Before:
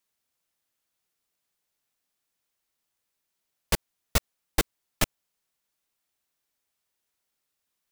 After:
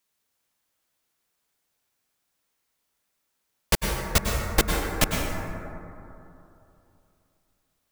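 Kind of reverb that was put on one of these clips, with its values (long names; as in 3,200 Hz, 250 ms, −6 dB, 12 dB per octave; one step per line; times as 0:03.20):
dense smooth reverb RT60 2.9 s, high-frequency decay 0.3×, pre-delay 90 ms, DRR 0 dB
level +3 dB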